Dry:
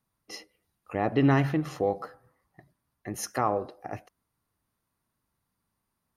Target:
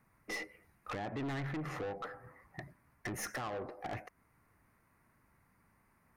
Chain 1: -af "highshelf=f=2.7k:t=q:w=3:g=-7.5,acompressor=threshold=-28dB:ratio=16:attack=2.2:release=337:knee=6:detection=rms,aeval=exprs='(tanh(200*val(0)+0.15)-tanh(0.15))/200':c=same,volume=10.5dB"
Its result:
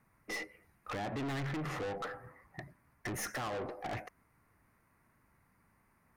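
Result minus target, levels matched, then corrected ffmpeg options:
compressor: peak gain reduction -6 dB
-af "highshelf=f=2.7k:t=q:w=3:g=-7.5,acompressor=threshold=-34.5dB:ratio=16:attack=2.2:release=337:knee=6:detection=rms,aeval=exprs='(tanh(200*val(0)+0.15)-tanh(0.15))/200':c=same,volume=10.5dB"

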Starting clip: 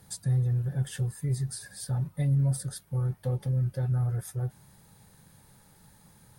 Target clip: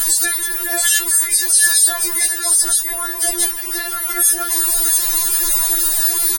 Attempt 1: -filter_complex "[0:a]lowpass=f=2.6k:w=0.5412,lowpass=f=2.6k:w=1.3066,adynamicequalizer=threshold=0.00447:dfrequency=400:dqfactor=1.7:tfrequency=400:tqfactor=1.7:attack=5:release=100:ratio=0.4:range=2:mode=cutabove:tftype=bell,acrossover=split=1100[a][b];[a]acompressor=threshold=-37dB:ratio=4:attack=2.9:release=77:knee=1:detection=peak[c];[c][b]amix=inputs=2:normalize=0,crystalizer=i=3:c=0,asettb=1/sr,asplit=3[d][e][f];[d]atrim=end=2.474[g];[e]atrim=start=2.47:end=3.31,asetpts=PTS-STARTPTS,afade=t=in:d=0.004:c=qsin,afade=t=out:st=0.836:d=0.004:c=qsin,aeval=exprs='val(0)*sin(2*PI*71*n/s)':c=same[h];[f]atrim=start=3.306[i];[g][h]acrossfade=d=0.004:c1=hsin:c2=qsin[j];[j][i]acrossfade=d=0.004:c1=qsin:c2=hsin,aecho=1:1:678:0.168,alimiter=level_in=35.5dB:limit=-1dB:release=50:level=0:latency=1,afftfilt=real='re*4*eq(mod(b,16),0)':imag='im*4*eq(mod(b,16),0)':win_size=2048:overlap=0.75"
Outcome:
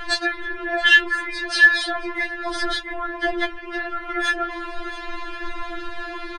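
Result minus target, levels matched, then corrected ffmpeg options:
2000 Hz band +13.0 dB; compressor: peak gain reduction -4.5 dB
-filter_complex "[0:a]adynamicequalizer=threshold=0.00447:dfrequency=400:dqfactor=1.7:tfrequency=400:tqfactor=1.7:attack=5:release=100:ratio=0.4:range=2:mode=cutabove:tftype=bell,acrossover=split=1100[a][b];[a]acompressor=threshold=-43dB:ratio=4:attack=2.9:release=77:knee=1:detection=peak[c];[c][b]amix=inputs=2:normalize=0,crystalizer=i=3:c=0,asettb=1/sr,asplit=3[d][e][f];[d]atrim=end=2.474[g];[e]atrim=start=2.47:end=3.31,asetpts=PTS-STARTPTS,afade=t=in:d=0.004:c=qsin,afade=t=out:st=0.836:d=0.004:c=qsin,aeval=exprs='val(0)*sin(2*PI*71*n/s)':c=same[h];[f]atrim=start=3.306[i];[g][h]acrossfade=d=0.004:c1=hsin:c2=qsin[j];[j][i]acrossfade=d=0.004:c1=qsin:c2=hsin,aecho=1:1:678:0.168,alimiter=level_in=35.5dB:limit=-1dB:release=50:level=0:latency=1,afftfilt=real='re*4*eq(mod(b,16),0)':imag='im*4*eq(mod(b,16),0)':win_size=2048:overlap=0.75"

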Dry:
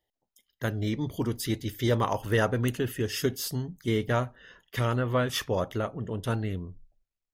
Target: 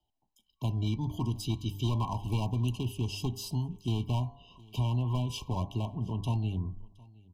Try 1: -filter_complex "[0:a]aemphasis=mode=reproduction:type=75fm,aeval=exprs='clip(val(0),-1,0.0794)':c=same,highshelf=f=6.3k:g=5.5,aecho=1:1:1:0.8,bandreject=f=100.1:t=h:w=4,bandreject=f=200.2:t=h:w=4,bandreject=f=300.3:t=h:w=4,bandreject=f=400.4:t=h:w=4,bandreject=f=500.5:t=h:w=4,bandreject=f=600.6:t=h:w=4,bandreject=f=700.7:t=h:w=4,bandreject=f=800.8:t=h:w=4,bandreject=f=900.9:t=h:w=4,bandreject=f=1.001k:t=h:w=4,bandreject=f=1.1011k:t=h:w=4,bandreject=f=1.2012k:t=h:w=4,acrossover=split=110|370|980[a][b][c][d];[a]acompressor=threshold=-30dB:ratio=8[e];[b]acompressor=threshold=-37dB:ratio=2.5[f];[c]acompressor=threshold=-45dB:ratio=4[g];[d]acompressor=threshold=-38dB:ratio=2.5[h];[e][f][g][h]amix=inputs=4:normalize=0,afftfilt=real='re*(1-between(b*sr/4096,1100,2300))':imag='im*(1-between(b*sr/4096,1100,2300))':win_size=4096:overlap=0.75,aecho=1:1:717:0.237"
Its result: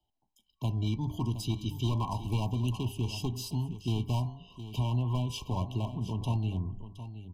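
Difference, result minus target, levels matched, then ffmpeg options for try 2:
echo-to-direct +12 dB
-filter_complex "[0:a]aemphasis=mode=reproduction:type=75fm,aeval=exprs='clip(val(0),-1,0.0794)':c=same,highshelf=f=6.3k:g=5.5,aecho=1:1:1:0.8,bandreject=f=100.1:t=h:w=4,bandreject=f=200.2:t=h:w=4,bandreject=f=300.3:t=h:w=4,bandreject=f=400.4:t=h:w=4,bandreject=f=500.5:t=h:w=4,bandreject=f=600.6:t=h:w=4,bandreject=f=700.7:t=h:w=4,bandreject=f=800.8:t=h:w=4,bandreject=f=900.9:t=h:w=4,bandreject=f=1.001k:t=h:w=4,bandreject=f=1.1011k:t=h:w=4,bandreject=f=1.2012k:t=h:w=4,acrossover=split=110|370|980[a][b][c][d];[a]acompressor=threshold=-30dB:ratio=8[e];[b]acompressor=threshold=-37dB:ratio=2.5[f];[c]acompressor=threshold=-45dB:ratio=4[g];[d]acompressor=threshold=-38dB:ratio=2.5[h];[e][f][g][h]amix=inputs=4:normalize=0,afftfilt=real='re*(1-between(b*sr/4096,1100,2300))':imag='im*(1-between(b*sr/4096,1100,2300))':win_size=4096:overlap=0.75,aecho=1:1:717:0.0596"

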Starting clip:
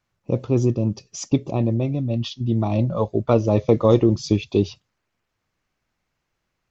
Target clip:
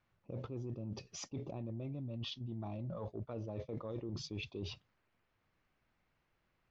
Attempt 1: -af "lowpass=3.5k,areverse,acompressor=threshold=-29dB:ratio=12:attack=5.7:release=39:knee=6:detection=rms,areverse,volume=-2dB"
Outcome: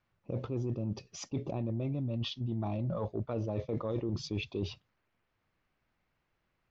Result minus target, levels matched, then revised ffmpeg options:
compressor: peak gain reduction -8.5 dB
-af "lowpass=3.5k,areverse,acompressor=threshold=-38dB:ratio=12:attack=5.7:release=39:knee=6:detection=rms,areverse,volume=-2dB"

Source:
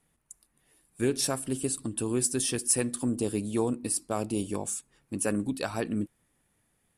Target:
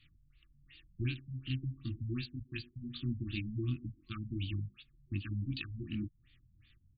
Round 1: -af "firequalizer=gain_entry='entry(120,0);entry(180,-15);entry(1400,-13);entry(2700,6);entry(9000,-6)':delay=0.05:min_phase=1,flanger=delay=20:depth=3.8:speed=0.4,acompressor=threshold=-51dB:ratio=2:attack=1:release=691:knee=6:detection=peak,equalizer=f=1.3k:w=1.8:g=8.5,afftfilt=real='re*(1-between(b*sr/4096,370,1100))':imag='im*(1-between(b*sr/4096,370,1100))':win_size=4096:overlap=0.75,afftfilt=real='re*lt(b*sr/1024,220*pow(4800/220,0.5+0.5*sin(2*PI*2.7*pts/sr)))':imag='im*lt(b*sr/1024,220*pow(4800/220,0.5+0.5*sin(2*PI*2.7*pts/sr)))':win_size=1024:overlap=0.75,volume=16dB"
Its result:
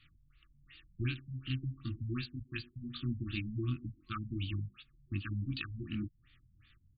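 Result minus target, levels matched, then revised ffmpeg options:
1000 Hz band +9.5 dB
-af "firequalizer=gain_entry='entry(120,0);entry(180,-15);entry(1400,-13);entry(2700,6);entry(9000,-6)':delay=0.05:min_phase=1,flanger=delay=20:depth=3.8:speed=0.4,acompressor=threshold=-51dB:ratio=2:attack=1:release=691:knee=6:detection=peak,equalizer=f=1.3k:w=1.8:g=-2,afftfilt=real='re*(1-between(b*sr/4096,370,1100))':imag='im*(1-between(b*sr/4096,370,1100))':win_size=4096:overlap=0.75,afftfilt=real='re*lt(b*sr/1024,220*pow(4800/220,0.5+0.5*sin(2*PI*2.7*pts/sr)))':imag='im*lt(b*sr/1024,220*pow(4800/220,0.5+0.5*sin(2*PI*2.7*pts/sr)))':win_size=1024:overlap=0.75,volume=16dB"

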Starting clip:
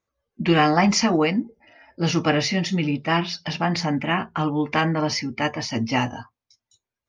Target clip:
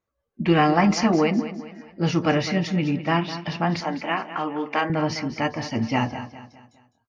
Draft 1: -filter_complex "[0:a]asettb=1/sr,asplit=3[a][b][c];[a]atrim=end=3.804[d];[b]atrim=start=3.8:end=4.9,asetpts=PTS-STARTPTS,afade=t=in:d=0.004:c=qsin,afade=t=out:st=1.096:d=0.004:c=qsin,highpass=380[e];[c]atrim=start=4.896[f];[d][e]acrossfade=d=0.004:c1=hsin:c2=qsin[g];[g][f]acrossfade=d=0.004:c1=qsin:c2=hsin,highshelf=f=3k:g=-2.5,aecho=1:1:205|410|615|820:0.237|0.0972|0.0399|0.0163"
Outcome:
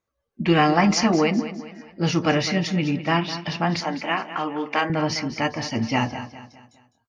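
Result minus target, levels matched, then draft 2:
8000 Hz band +4.5 dB
-filter_complex "[0:a]asettb=1/sr,asplit=3[a][b][c];[a]atrim=end=3.804[d];[b]atrim=start=3.8:end=4.9,asetpts=PTS-STARTPTS,afade=t=in:d=0.004:c=qsin,afade=t=out:st=1.096:d=0.004:c=qsin,highpass=380[e];[c]atrim=start=4.896[f];[d][e]acrossfade=d=0.004:c1=hsin:c2=qsin[g];[g][f]acrossfade=d=0.004:c1=qsin:c2=hsin,highshelf=f=3k:g=-9,aecho=1:1:205|410|615|820:0.237|0.0972|0.0399|0.0163"

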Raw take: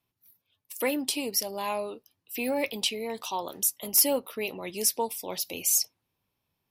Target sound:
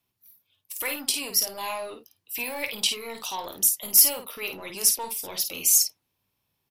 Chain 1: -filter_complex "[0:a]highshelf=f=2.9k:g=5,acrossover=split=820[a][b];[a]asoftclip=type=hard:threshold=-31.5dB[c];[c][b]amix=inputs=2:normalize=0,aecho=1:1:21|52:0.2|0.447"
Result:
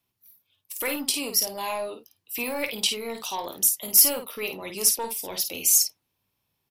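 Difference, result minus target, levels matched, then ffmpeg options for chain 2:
hard clip: distortion -5 dB
-filter_complex "[0:a]highshelf=f=2.9k:g=5,acrossover=split=820[a][b];[a]asoftclip=type=hard:threshold=-39.5dB[c];[c][b]amix=inputs=2:normalize=0,aecho=1:1:21|52:0.2|0.447"

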